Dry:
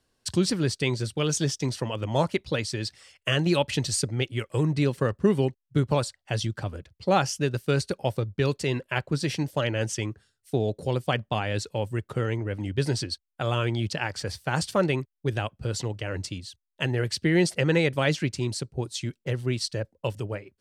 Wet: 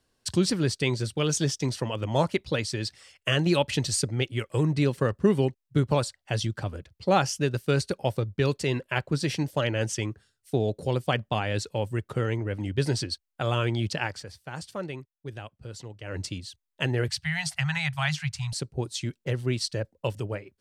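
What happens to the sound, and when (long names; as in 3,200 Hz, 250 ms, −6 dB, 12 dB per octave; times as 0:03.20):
0:14.05–0:16.21: duck −11 dB, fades 0.21 s
0:17.08–0:18.53: Chebyshev band-stop filter 150–730 Hz, order 4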